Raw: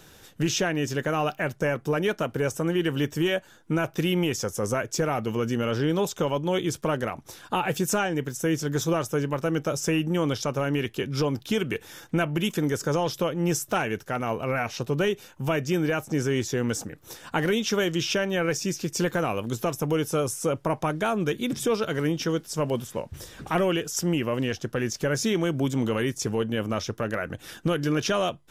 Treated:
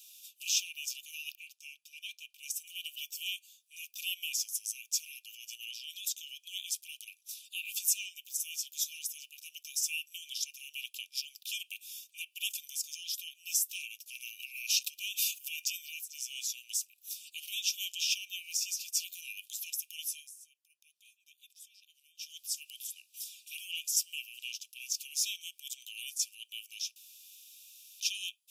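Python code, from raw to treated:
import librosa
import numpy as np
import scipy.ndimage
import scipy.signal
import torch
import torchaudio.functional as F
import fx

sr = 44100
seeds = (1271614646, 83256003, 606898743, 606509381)

y = fx.lowpass(x, sr, hz=3300.0, slope=6, at=(1.35, 2.43))
y = fx.env_flatten(y, sr, amount_pct=70, at=(14.09, 15.82))
y = fx.edit(y, sr, fx.fade_down_up(start_s=20.04, length_s=2.36, db=-20.0, fade_s=0.26),
    fx.room_tone_fill(start_s=26.96, length_s=1.04), tone=tone)
y = scipy.signal.sosfilt(scipy.signal.cheby1(10, 1.0, 2400.0, 'highpass', fs=sr, output='sos'), y)
y = fx.high_shelf(y, sr, hz=7300.0, db=11.5)
y = y * librosa.db_to_amplitude(-4.0)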